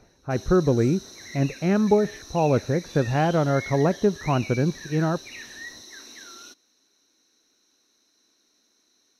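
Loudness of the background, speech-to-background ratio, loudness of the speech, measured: -39.5 LUFS, 16.0 dB, -23.5 LUFS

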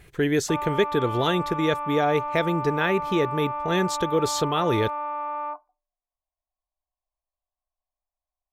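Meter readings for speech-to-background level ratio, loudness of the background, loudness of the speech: 5.5 dB, -30.5 LUFS, -25.0 LUFS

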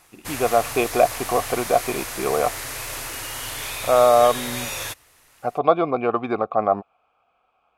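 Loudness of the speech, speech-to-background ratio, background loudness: -21.0 LUFS, 8.5 dB, -29.5 LUFS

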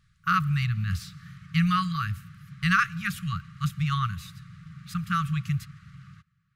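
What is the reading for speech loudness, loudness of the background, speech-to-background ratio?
-27.5 LUFS, -47.0 LUFS, 19.5 dB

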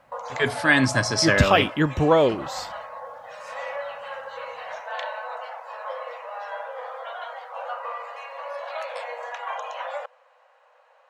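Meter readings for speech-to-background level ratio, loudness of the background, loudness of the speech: 14.0 dB, -34.5 LUFS, -20.5 LUFS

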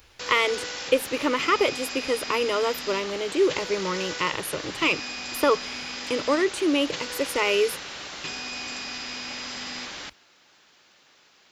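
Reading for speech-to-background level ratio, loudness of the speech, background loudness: 7.5 dB, -25.5 LUFS, -33.0 LUFS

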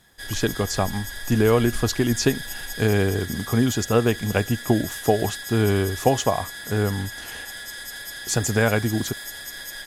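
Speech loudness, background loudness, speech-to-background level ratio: -23.0 LUFS, -33.5 LUFS, 10.5 dB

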